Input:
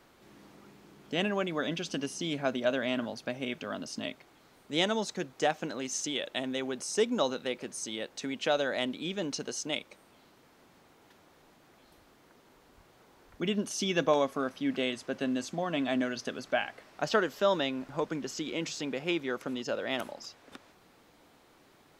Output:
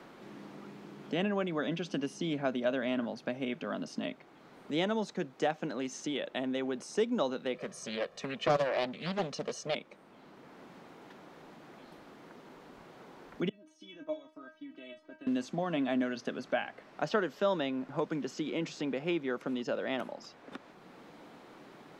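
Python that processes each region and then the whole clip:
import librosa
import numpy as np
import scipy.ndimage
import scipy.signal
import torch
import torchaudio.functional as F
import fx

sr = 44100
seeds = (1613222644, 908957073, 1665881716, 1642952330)

y = fx.chain(x, sr, fx.comb(ms=1.7, depth=0.95),
    fx.doppler_dist(depth_ms=0.53), at=(7.54, 9.75))
y = fx.chain(y, sr, fx.high_shelf(hz=7700.0, db=-12.0),
    fx.level_steps(step_db=12),
    fx.stiff_resonator(f0_hz=310.0, decay_s=0.23, stiffness=0.002), at=(13.49, 15.27))
y = fx.lowpass(y, sr, hz=2200.0, slope=6)
y = fx.low_shelf_res(y, sr, hz=120.0, db=-8.5, q=1.5)
y = fx.band_squash(y, sr, depth_pct=40)
y = y * librosa.db_to_amplitude(-1.0)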